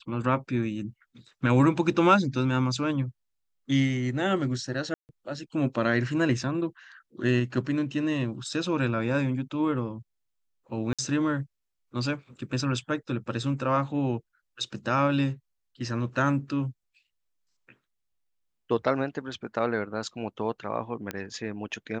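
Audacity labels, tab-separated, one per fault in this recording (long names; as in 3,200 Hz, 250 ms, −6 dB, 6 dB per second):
4.940000	5.090000	drop-out 149 ms
10.930000	10.990000	drop-out 56 ms
21.110000	21.110000	click −16 dBFS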